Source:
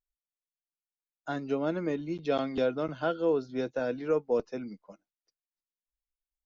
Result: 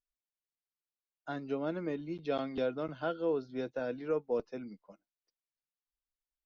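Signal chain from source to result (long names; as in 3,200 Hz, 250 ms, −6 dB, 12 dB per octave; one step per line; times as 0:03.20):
low-pass filter 5,500 Hz 24 dB per octave
level −5 dB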